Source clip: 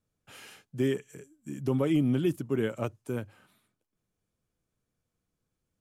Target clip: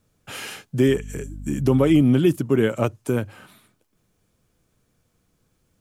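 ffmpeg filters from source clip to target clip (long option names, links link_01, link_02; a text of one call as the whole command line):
ffmpeg -i in.wav -filter_complex "[0:a]asplit=2[link_01][link_02];[link_02]acompressor=threshold=-39dB:ratio=6,volume=3dB[link_03];[link_01][link_03]amix=inputs=2:normalize=0,asettb=1/sr,asplit=3[link_04][link_05][link_06];[link_04]atrim=end=0.884[link_07];[link_05]atrim=start=0.88:end=2.01,asetpts=PTS-STARTPTS,afade=type=in:duration=0.004:curve=qsin,afade=type=out:start_time=1.126:duration=0.004:curve=qsin,aeval=exprs='val(0)+0.00891*(sin(2*PI*50*n/s)+sin(2*PI*2*50*n/s)/2+sin(2*PI*3*50*n/s)/3+sin(2*PI*4*50*n/s)/4+sin(2*PI*5*50*n/s)/5)':channel_layout=same[link_08];[link_06]atrim=start=2.006[link_09];[link_07][link_08]acrossfade=duration=0.004:curve1=hsin:curve2=qsin[link_10];[link_10][link_09]acrossfade=duration=0.004:curve1=qsin:curve2=hsin,volume=7.5dB" out.wav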